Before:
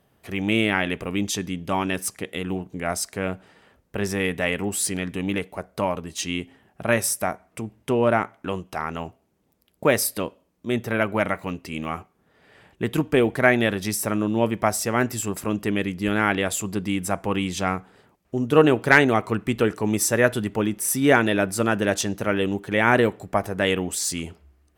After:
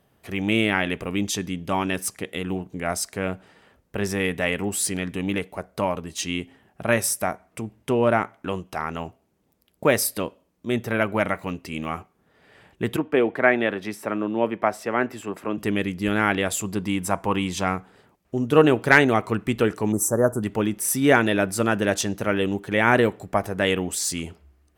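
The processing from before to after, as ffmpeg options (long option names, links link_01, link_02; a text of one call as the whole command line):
ffmpeg -i in.wav -filter_complex "[0:a]asettb=1/sr,asplit=3[link_01][link_02][link_03];[link_01]atrim=end=12.964[link_04];[link_02]atrim=start=12.96:end=15.58,asetpts=PTS-STARTPTS,afade=type=in:duration=0.004:curve=qsin,afade=type=out:start_time=2.616:duration=0.004:curve=qsin,acrossover=split=220 3100:gain=0.2 1 0.141[link_05][link_06][link_07];[link_05][link_06][link_07]amix=inputs=3:normalize=0[link_08];[link_03]atrim=start=15.576[link_09];[link_04][link_08]acrossfade=duration=0.004:curve1=hsin:curve2=qsin[link_10];[link_10][link_09]acrossfade=duration=0.004:curve1=qsin:curve2=hsin,asettb=1/sr,asplit=3[link_11][link_12][link_13];[link_11]atrim=end=16.784[link_14];[link_12]atrim=start=16.78:end=17.64,asetpts=PTS-STARTPTS,afade=type=in:duration=0.004:curve=qsin,afade=type=out:start_time=0.856:duration=0.004:curve=qsin,equalizer=frequency=980:width_type=o:width=0.36:gain=7.5[link_15];[link_13]atrim=start=17.636[link_16];[link_14][link_15]acrossfade=duration=0.004:curve1=hsin:curve2=qsin[link_17];[link_17][link_16]acrossfade=duration=0.004:curve1=qsin:curve2=hsin,asettb=1/sr,asplit=3[link_18][link_19][link_20];[link_18]atrim=end=19.924[link_21];[link_19]atrim=start=19.92:end=20.43,asetpts=PTS-STARTPTS,afade=type=in:duration=0.004:curve=qsin,afade=type=out:start_time=0.506:duration=0.004:curve=qsin,asuperstop=centerf=3000:order=8:qfactor=0.59[link_22];[link_20]atrim=start=20.426[link_23];[link_21][link_22]acrossfade=duration=0.004:curve1=hsin:curve2=qsin[link_24];[link_24][link_23]acrossfade=duration=0.004:curve1=qsin:curve2=hsin" out.wav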